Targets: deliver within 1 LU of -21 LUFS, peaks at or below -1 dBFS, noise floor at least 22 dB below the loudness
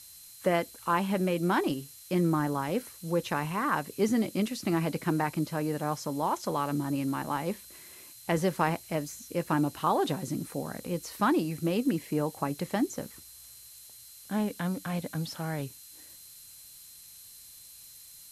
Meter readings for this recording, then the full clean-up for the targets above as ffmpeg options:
steady tone 4100 Hz; tone level -58 dBFS; noise floor -51 dBFS; noise floor target -53 dBFS; loudness -30.5 LUFS; peak -11.5 dBFS; loudness target -21.0 LUFS
-> -af "bandreject=f=4.1k:w=30"
-af "afftdn=nr=6:nf=-51"
-af "volume=9.5dB"

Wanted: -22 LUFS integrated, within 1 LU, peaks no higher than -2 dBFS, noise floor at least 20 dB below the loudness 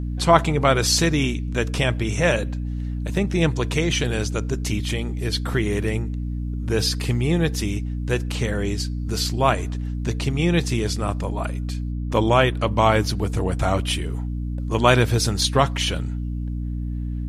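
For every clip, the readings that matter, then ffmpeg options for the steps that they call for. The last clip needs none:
hum 60 Hz; harmonics up to 300 Hz; hum level -24 dBFS; loudness -22.5 LUFS; peak -1.5 dBFS; loudness target -22.0 LUFS
-> -af "bandreject=f=60:t=h:w=6,bandreject=f=120:t=h:w=6,bandreject=f=180:t=h:w=6,bandreject=f=240:t=h:w=6,bandreject=f=300:t=h:w=6"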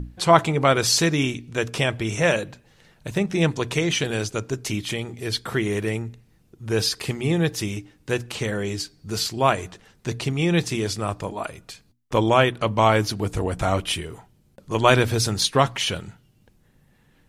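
hum none; loudness -23.0 LUFS; peak -1.0 dBFS; loudness target -22.0 LUFS
-> -af "volume=1dB,alimiter=limit=-2dB:level=0:latency=1"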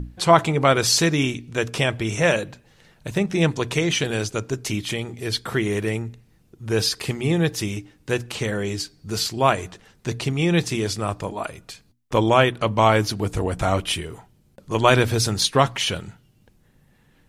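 loudness -22.0 LUFS; peak -2.0 dBFS; noise floor -59 dBFS

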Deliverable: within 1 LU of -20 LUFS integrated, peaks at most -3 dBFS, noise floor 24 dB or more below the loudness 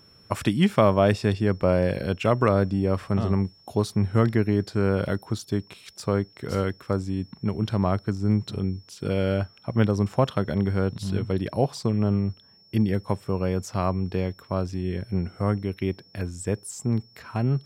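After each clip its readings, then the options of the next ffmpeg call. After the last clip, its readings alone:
steady tone 5400 Hz; tone level -54 dBFS; loudness -25.5 LUFS; peak -6.0 dBFS; loudness target -20.0 LUFS
-> -af "bandreject=f=5.4k:w=30"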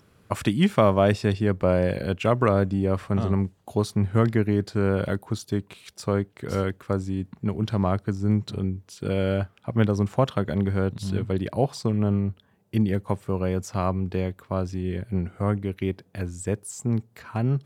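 steady tone none; loudness -25.5 LUFS; peak -6.0 dBFS; loudness target -20.0 LUFS
-> -af "volume=5.5dB,alimiter=limit=-3dB:level=0:latency=1"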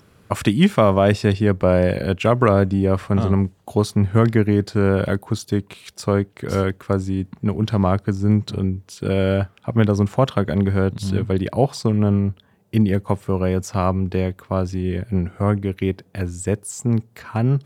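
loudness -20.5 LUFS; peak -3.0 dBFS; noise floor -56 dBFS

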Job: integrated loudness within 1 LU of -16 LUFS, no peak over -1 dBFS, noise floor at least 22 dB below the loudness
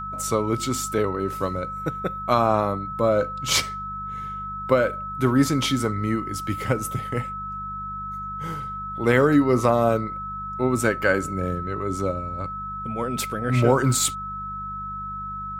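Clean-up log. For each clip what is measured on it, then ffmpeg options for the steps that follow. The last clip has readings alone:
hum 50 Hz; harmonics up to 200 Hz; hum level -37 dBFS; steady tone 1300 Hz; tone level -30 dBFS; loudness -24.0 LUFS; peak -5.0 dBFS; loudness target -16.0 LUFS
-> -af "bandreject=f=50:t=h:w=4,bandreject=f=100:t=h:w=4,bandreject=f=150:t=h:w=4,bandreject=f=200:t=h:w=4"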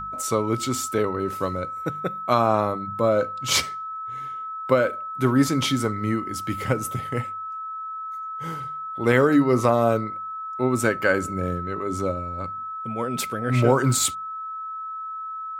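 hum none; steady tone 1300 Hz; tone level -30 dBFS
-> -af "bandreject=f=1.3k:w=30"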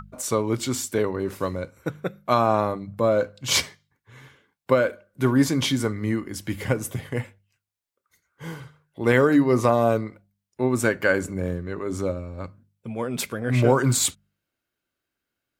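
steady tone none; loudness -23.5 LUFS; peak -5.5 dBFS; loudness target -16.0 LUFS
-> -af "volume=7.5dB,alimiter=limit=-1dB:level=0:latency=1"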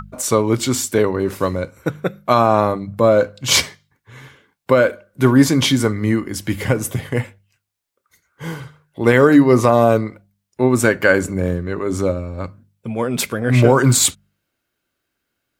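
loudness -16.5 LUFS; peak -1.0 dBFS; noise floor -76 dBFS

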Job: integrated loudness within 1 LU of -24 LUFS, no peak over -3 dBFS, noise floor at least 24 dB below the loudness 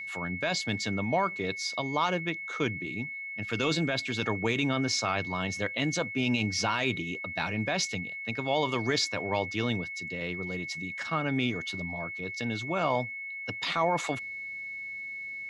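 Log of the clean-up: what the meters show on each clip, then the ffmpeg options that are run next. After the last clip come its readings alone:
steady tone 2200 Hz; tone level -36 dBFS; loudness -30.5 LUFS; peak -16.0 dBFS; loudness target -24.0 LUFS
-> -af "bandreject=f=2.2k:w=30"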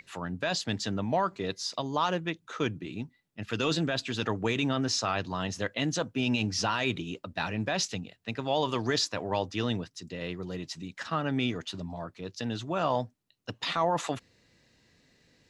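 steady tone none; loudness -31.5 LUFS; peak -16.5 dBFS; loudness target -24.0 LUFS
-> -af "volume=7.5dB"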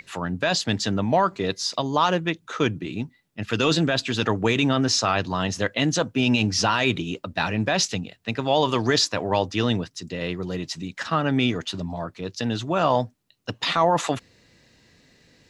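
loudness -24.0 LUFS; peak -9.0 dBFS; noise floor -62 dBFS

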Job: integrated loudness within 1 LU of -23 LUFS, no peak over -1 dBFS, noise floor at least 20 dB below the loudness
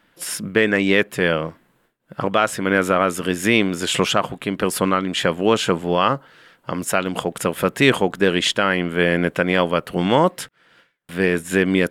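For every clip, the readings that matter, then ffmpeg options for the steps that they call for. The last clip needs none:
loudness -19.5 LUFS; peak -3.0 dBFS; loudness target -23.0 LUFS
-> -af "volume=-3.5dB"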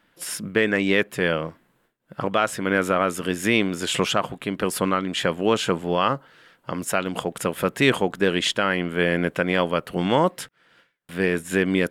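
loudness -23.0 LUFS; peak -6.5 dBFS; noise floor -66 dBFS

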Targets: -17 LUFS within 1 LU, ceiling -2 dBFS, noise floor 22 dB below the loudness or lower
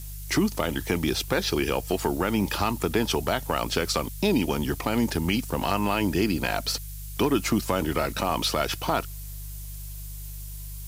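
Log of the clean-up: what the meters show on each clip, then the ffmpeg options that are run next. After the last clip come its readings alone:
hum 50 Hz; harmonics up to 150 Hz; hum level -35 dBFS; noise floor -37 dBFS; noise floor target -48 dBFS; loudness -26.0 LUFS; peak -9.0 dBFS; loudness target -17.0 LUFS
-> -af "bandreject=f=50:t=h:w=4,bandreject=f=100:t=h:w=4,bandreject=f=150:t=h:w=4"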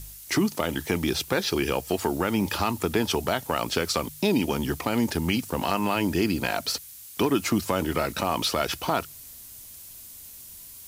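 hum none; noise floor -45 dBFS; noise floor target -48 dBFS
-> -af "afftdn=nr=6:nf=-45"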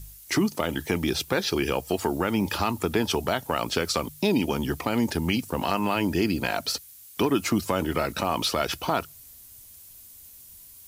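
noise floor -49 dBFS; loudness -26.5 LUFS; peak -9.0 dBFS; loudness target -17.0 LUFS
-> -af "volume=9.5dB,alimiter=limit=-2dB:level=0:latency=1"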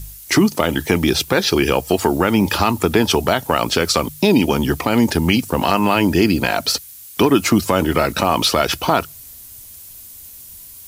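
loudness -17.0 LUFS; peak -2.0 dBFS; noise floor -39 dBFS

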